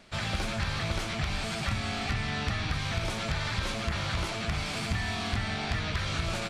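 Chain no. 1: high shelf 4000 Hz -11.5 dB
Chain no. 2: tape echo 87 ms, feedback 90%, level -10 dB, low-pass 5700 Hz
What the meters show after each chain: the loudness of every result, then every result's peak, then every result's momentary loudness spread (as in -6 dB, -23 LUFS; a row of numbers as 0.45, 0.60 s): -33.0, -31.0 LUFS; -19.5, -17.5 dBFS; 1, 1 LU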